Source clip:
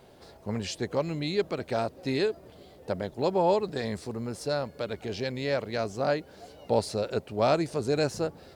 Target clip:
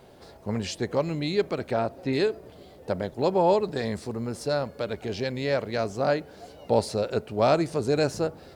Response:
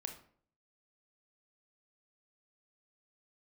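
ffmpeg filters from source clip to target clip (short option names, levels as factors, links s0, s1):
-filter_complex "[0:a]asplit=2[s0][s1];[1:a]atrim=start_sample=2205,lowpass=2600[s2];[s1][s2]afir=irnorm=-1:irlink=0,volume=0.237[s3];[s0][s3]amix=inputs=2:normalize=0,asettb=1/sr,asplit=3[s4][s5][s6];[s4]atrim=end=1.714[s7];[s5]atrim=start=1.71:end=2.13,asetpts=PTS-STARTPTS,afade=t=in:d=0.004:c=qsin,afade=t=out:st=0.416:d=0.004:c=qsin,acrossover=split=3300[s8][s9];[s9]acompressor=threshold=0.00141:ratio=4:attack=1:release=60[s10];[s8][s10]amix=inputs=2:normalize=0[s11];[s6]atrim=start=2.126[s12];[s7][s11]acrossfade=d=0.004:c1=hsin:c2=qsin[s13];[s13][s12]acrossfade=d=0.004:c1=qsin:c2=hsin,volume=1.19"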